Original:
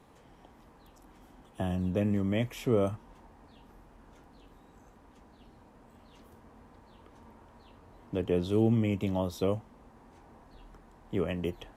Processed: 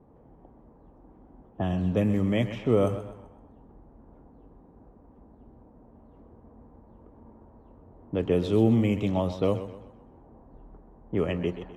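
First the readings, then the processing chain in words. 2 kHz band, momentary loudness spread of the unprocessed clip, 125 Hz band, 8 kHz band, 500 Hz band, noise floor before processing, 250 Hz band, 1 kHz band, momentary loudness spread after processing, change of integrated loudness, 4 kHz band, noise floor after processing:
+4.0 dB, 11 LU, +4.0 dB, can't be measured, +4.5 dB, −58 dBFS, +4.5 dB, +4.0 dB, 11 LU, +4.0 dB, +3.0 dB, −55 dBFS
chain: low-pass that shuts in the quiet parts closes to 580 Hz, open at −24 dBFS
feedback echo with a swinging delay time 128 ms, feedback 39%, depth 65 cents, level −12 dB
level +4 dB

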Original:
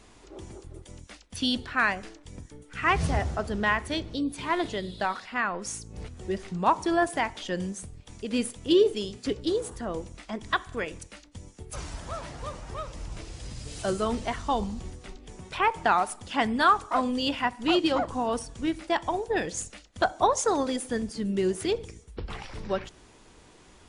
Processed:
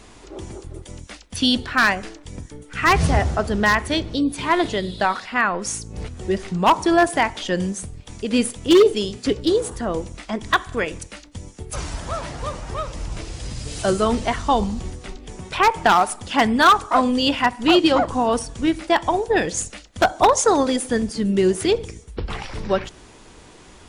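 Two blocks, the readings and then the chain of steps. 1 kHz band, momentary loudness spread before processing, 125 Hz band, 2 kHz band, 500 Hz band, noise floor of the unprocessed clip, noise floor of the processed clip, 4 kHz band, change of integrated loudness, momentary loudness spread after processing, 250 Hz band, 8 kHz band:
+8.0 dB, 19 LU, +8.5 dB, +8.0 dB, +8.0 dB, −54 dBFS, −46 dBFS, +8.5 dB, +8.0 dB, 20 LU, +8.5 dB, +9.0 dB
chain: wave folding −15 dBFS
level +8.5 dB

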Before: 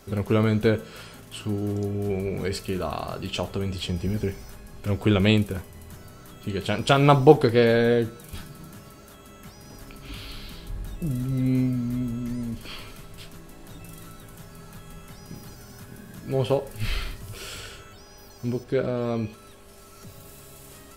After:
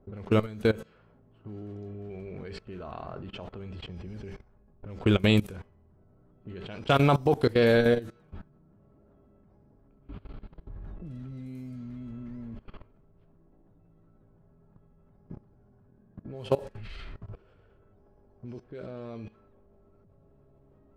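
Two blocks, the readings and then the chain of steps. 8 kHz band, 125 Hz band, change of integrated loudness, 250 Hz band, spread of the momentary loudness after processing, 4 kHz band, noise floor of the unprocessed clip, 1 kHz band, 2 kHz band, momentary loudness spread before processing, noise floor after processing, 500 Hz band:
below −10 dB, −6.0 dB, −4.0 dB, −5.5 dB, 23 LU, −5.5 dB, −47 dBFS, −6.0 dB, −3.5 dB, 24 LU, −61 dBFS, −5.5 dB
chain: low-pass that shuts in the quiet parts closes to 540 Hz, open at −18 dBFS
output level in coarse steps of 20 dB

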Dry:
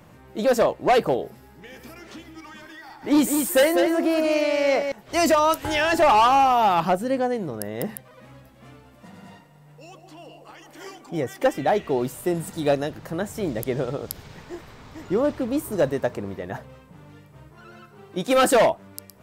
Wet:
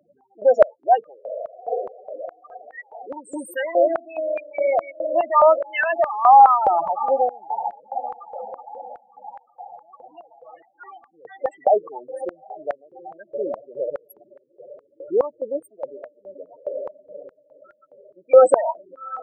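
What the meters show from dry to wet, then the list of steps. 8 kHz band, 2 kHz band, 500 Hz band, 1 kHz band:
below −15 dB, −3.0 dB, +2.0 dB, +4.0 dB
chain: feedback delay with all-pass diffusion 815 ms, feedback 47%, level −10 dB
spectral peaks only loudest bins 8
high-pass on a step sequencer 4.8 Hz 520–1,700 Hz
level −1.5 dB

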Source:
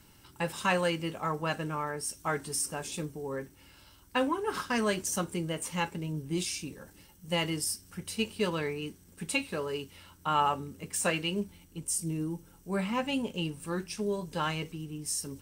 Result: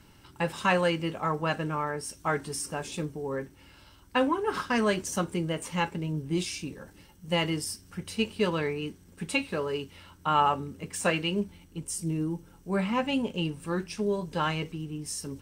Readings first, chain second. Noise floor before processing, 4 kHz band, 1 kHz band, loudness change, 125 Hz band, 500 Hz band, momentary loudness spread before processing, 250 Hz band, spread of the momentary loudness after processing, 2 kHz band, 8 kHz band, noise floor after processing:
−58 dBFS, +1.5 dB, +3.5 dB, +2.5 dB, +3.5 dB, +3.5 dB, 10 LU, +3.5 dB, 10 LU, +2.5 dB, −3.0 dB, −56 dBFS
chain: high-shelf EQ 6,400 Hz −10.5 dB
level +3.5 dB

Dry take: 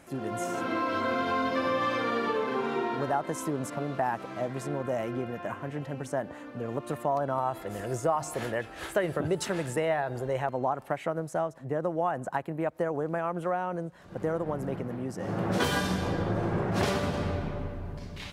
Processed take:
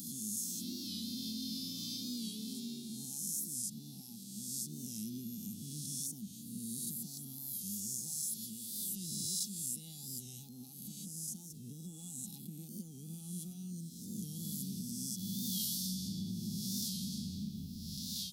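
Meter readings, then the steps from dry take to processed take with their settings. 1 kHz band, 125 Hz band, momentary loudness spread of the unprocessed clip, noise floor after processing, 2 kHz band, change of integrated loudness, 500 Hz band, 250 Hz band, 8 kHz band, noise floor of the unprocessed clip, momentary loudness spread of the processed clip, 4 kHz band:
below −40 dB, −11.0 dB, 8 LU, −50 dBFS, below −35 dB, −9.0 dB, −34.5 dB, −8.5 dB, +7.0 dB, −45 dBFS, 10 LU, −0.5 dB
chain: peak hold with a rise ahead of every peak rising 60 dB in 1.22 s
high-pass filter 55 Hz
hollow resonant body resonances 210/820/3,400 Hz, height 14 dB, ringing for 55 ms
in parallel at −11 dB: soft clipping −17 dBFS, distortion −15 dB
on the sum: octave-band graphic EQ 500/1,000/2,000/8,000 Hz +8/+7/−11/−6 dB
automatic gain control gain up to 7.5 dB
elliptic band-stop filter 210–4,500 Hz, stop band 50 dB
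first-order pre-emphasis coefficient 0.97
on a send: backwards echo 1,092 ms −18 dB
on the sum: downward compressor 2.5 to 1, threshold −46 dBFS, peak gain reduction 9.5 dB
wow of a warped record 45 rpm, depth 100 cents
level +8.5 dB

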